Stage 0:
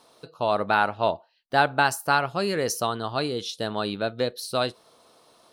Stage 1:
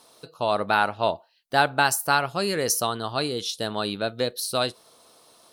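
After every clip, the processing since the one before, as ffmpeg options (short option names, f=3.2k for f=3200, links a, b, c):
-af "aemphasis=mode=production:type=cd"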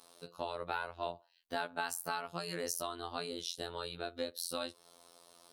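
-af "acompressor=threshold=-33dB:ratio=2.5,afftfilt=real='hypot(re,im)*cos(PI*b)':imag='0':win_size=2048:overlap=0.75,volume=-2.5dB"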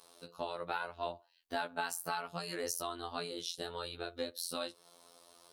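-af "flanger=delay=1.8:depth=4.7:regen=-44:speed=0.73:shape=triangular,volume=4dB"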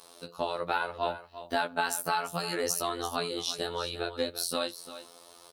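-af "aecho=1:1:346:0.224,volume=7.5dB"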